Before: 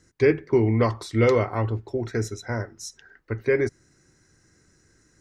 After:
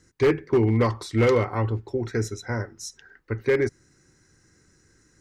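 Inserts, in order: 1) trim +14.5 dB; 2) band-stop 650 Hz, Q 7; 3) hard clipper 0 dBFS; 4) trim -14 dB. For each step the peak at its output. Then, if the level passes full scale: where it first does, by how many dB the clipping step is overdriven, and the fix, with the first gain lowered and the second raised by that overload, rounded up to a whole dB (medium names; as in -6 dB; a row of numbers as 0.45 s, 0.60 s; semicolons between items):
+7.0 dBFS, +7.0 dBFS, 0.0 dBFS, -14.0 dBFS; step 1, 7.0 dB; step 1 +7.5 dB, step 4 -7 dB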